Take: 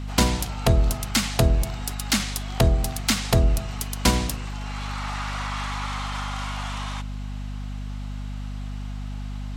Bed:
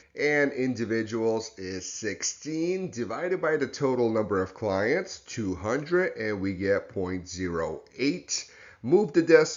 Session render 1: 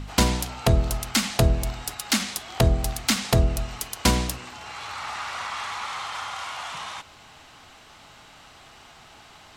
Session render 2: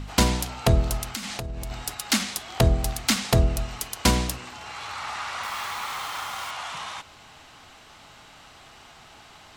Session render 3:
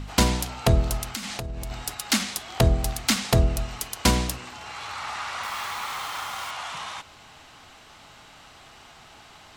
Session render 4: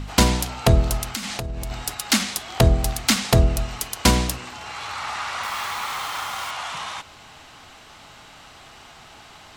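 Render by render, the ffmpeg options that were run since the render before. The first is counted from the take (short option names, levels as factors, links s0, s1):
-af "bandreject=f=50:t=h:w=4,bandreject=f=100:t=h:w=4,bandreject=f=150:t=h:w=4,bandreject=f=200:t=h:w=4,bandreject=f=250:t=h:w=4"
-filter_complex "[0:a]asettb=1/sr,asplit=3[s0][s1][s2];[s0]atrim=end=1.094[s3];[s1]atrim=start=1.09:end=1.71,asetpts=PTS-STARTPTS,afade=t=in:d=0.004:c=qsin,afade=t=out:st=0.616:d=0.004:c=qsin,acompressor=threshold=0.0398:ratio=16:attack=3.2:release=140:knee=1:detection=peak[s4];[s2]atrim=start=1.706[s5];[s3][s4]acrossfade=d=0.004:c1=hsin:c2=qsin[s6];[s6][s5]acrossfade=d=0.004:c1=qsin:c2=hsin,asettb=1/sr,asplit=3[s7][s8][s9];[s7]atrim=end=5.434[s10];[s8]atrim=start=5.43:end=6.51,asetpts=PTS-STARTPTS,afade=t=in:d=0.004:c=qsin,afade=t=out:st=1.076:d=0.004:c=qsin,acrusher=bits=5:mix=0:aa=0.5[s11];[s9]atrim=start=6.506[s12];[s10][s11]acrossfade=d=0.004:c1=hsin:c2=qsin[s13];[s13][s12]acrossfade=d=0.004:c1=qsin:c2=hsin"
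-af anull
-af "volume=1.5"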